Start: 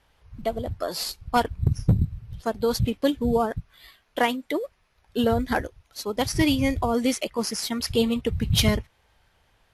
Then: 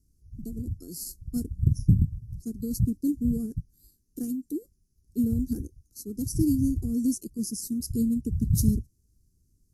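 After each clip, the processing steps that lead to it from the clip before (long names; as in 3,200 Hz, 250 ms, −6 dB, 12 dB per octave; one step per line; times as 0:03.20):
dynamic equaliser 5,400 Hz, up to −4 dB, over −41 dBFS, Q 1.2
inverse Chebyshev band-stop filter 570–3,500 Hz, stop band 40 dB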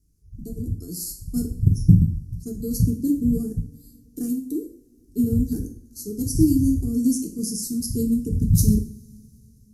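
automatic gain control gain up to 4 dB
coupled-rooms reverb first 0.46 s, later 3.6 s, from −28 dB, DRR 2 dB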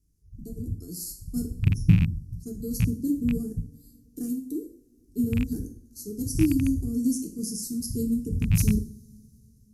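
loose part that buzzes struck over −15 dBFS, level −20 dBFS
level −4.5 dB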